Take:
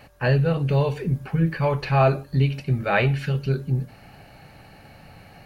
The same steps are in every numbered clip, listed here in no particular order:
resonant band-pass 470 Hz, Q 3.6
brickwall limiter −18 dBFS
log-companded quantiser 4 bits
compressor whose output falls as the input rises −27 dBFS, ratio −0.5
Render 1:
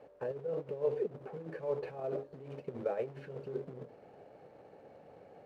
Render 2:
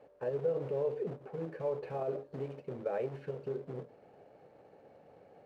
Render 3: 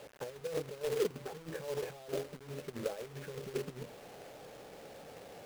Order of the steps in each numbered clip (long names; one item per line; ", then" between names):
log-companded quantiser, then brickwall limiter, then compressor whose output falls as the input rises, then resonant band-pass
log-companded quantiser, then brickwall limiter, then resonant band-pass, then compressor whose output falls as the input rises
compressor whose output falls as the input rises, then brickwall limiter, then resonant band-pass, then log-companded quantiser